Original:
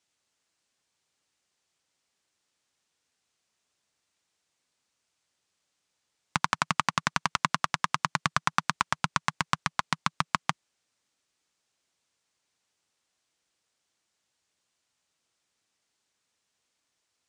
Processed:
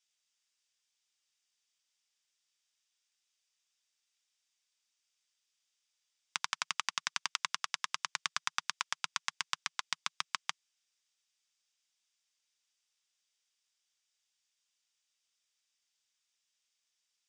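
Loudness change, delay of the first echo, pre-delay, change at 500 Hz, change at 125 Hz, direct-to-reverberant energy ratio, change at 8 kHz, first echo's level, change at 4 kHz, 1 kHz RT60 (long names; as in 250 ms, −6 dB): −7.5 dB, no echo audible, no reverb audible, −18.0 dB, −30.0 dB, no reverb audible, −2.0 dB, no echo audible, −2.5 dB, no reverb audible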